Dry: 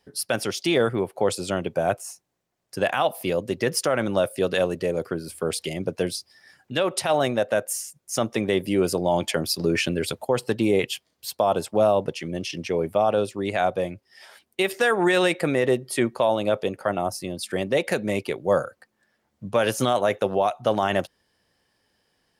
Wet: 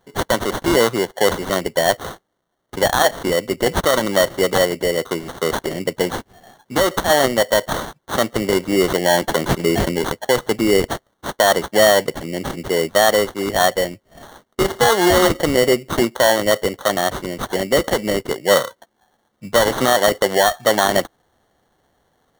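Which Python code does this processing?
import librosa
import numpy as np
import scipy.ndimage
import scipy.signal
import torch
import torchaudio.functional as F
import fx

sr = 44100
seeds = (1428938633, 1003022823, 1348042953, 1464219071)

y = fx.highpass(x, sr, hz=290.0, slope=6)
y = fx.sample_hold(y, sr, seeds[0], rate_hz=2500.0, jitter_pct=0)
y = y * librosa.db_to_amplitude(7.5)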